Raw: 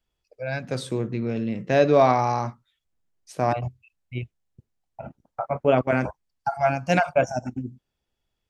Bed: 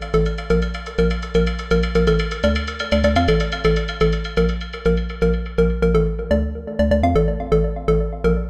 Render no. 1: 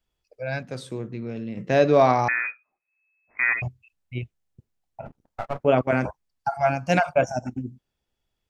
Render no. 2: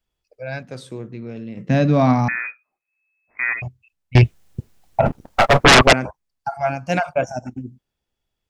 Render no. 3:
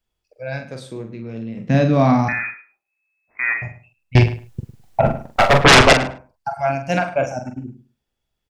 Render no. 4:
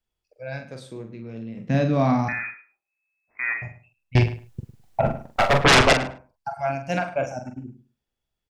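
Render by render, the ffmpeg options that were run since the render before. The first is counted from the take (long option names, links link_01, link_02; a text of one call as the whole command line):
ffmpeg -i in.wav -filter_complex "[0:a]asettb=1/sr,asplit=3[link_01][link_02][link_03];[link_01]atrim=end=2.284[link_04];[link_02]atrim=start=2.28:end=3.62,asetpts=PTS-STARTPTS,afade=type=in:duration=0.004:curve=qsin,afade=type=out:start_time=1.336:duration=0.004:curve=qsin,lowpass=frequency=2200:width_type=q:width=0.5098,lowpass=frequency=2200:width_type=q:width=0.6013,lowpass=frequency=2200:width_type=q:width=0.9,lowpass=frequency=2200:width_type=q:width=2.563,afreqshift=-2600[link_05];[link_03]atrim=start=3.616[link_06];[link_04][link_05]acrossfade=duration=0.004:curve1=hsin:curve2=qsin[link_07];[link_07][link_06]acrossfade=duration=0.004:curve1=qsin:curve2=hsin,asplit=3[link_08][link_09][link_10];[link_08]afade=type=out:start_time=5.05:duration=0.02[link_11];[link_09]aeval=exprs='if(lt(val(0),0),0.251*val(0),val(0))':channel_layout=same,afade=type=in:start_time=5.05:duration=0.02,afade=type=out:start_time=5.58:duration=0.02[link_12];[link_10]afade=type=in:start_time=5.58:duration=0.02[link_13];[link_11][link_12][link_13]amix=inputs=3:normalize=0,asplit=3[link_14][link_15][link_16];[link_14]atrim=end=0.632[link_17];[link_15]atrim=start=0.628:end=1.572,asetpts=PTS-STARTPTS,volume=-5.5dB[link_18];[link_16]atrim=start=1.568[link_19];[link_17][link_18]acrossfade=duration=0.004:curve1=hsin:curve2=hsin[link_20];[link_20][link_19]acrossfade=duration=0.004:curve1=hsin:curve2=hsin" out.wav
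ffmpeg -i in.wav -filter_complex "[0:a]asettb=1/sr,asplit=3[link_01][link_02][link_03];[link_01]atrim=end=1.694[link_04];[link_02]atrim=start=1.69:end=2.36,asetpts=PTS-STARTPTS,afade=type=in:duration=0.004:curve=qsin,afade=type=out:start_time=0.666:duration=0.004:curve=qsin,lowshelf=frequency=300:width_type=q:width=3:gain=8.5[link_05];[link_03]atrim=start=2.356[link_06];[link_04][link_05]acrossfade=duration=0.004:curve1=hsin:curve2=qsin[link_07];[link_07][link_06]acrossfade=duration=0.004:curve1=qsin:curve2=hsin,asettb=1/sr,asplit=3[link_08][link_09][link_10];[link_08]atrim=end=4.154[link_11];[link_09]atrim=start=4.15:end=5.93,asetpts=PTS-STARTPTS,afade=type=in:duration=0.004:curve=qsin,afade=type=out:start_time=1.776:duration=0.004:curve=qsin,aeval=exprs='0.531*sin(PI/2*8.91*val(0)/0.531)':channel_layout=same[link_12];[link_10]atrim=start=5.926[link_13];[link_11][link_12]acrossfade=duration=0.004:curve1=hsin:curve2=qsin[link_14];[link_14][link_13]acrossfade=duration=0.004:curve1=qsin:curve2=hsin" out.wav
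ffmpeg -i in.wav -filter_complex "[0:a]asplit=2[link_01][link_02];[link_02]adelay=44,volume=-7dB[link_03];[link_01][link_03]amix=inputs=2:normalize=0,asplit=2[link_04][link_05];[link_05]adelay=105,lowpass=frequency=3500:poles=1,volume=-13.5dB,asplit=2[link_06][link_07];[link_07]adelay=105,lowpass=frequency=3500:poles=1,volume=0.17[link_08];[link_04][link_06][link_08]amix=inputs=3:normalize=0" out.wav
ffmpeg -i in.wav -af "volume=-5.5dB" out.wav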